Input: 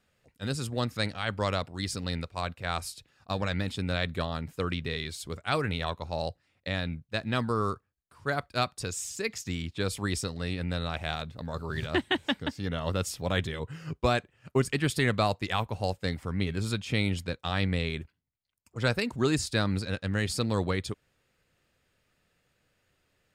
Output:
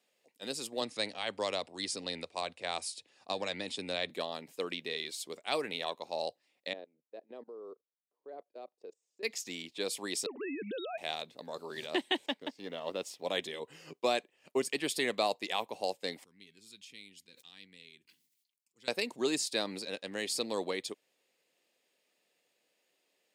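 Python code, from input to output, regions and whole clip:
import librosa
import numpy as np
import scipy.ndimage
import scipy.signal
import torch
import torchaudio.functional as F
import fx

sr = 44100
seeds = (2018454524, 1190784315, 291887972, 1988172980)

y = fx.chain(x, sr, fx.brickwall_lowpass(high_hz=11000.0),
    fx.peak_eq(hz=82.0, db=13.0, octaves=0.72),
    fx.band_squash(depth_pct=40), at=(0.81, 4.1))
y = fx.chain(y, sr, fx.bandpass_q(hz=450.0, q=2.1),
    fx.level_steps(step_db=21), at=(6.73, 9.23))
y = fx.chain(y, sr, fx.sine_speech(),
    fx.peak_eq(hz=2600.0, db=-5.5, octaves=1.2), at=(10.26, 10.98))
y = fx.chain(y, sr, fx.law_mismatch(coded='A'),
    fx.high_shelf(hz=5100.0, db=-11.5), at=(12.26, 13.24))
y = fx.chain(y, sr, fx.tone_stack(knobs='6-0-2'),
    fx.notch(hz=620.0, q=5.3),
    fx.sustainer(db_per_s=68.0), at=(16.24, 18.88))
y = scipy.signal.sosfilt(scipy.signal.bessel(4, 410.0, 'highpass', norm='mag', fs=sr, output='sos'), y)
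y = fx.peak_eq(y, sr, hz=1400.0, db=-13.0, octaves=0.7)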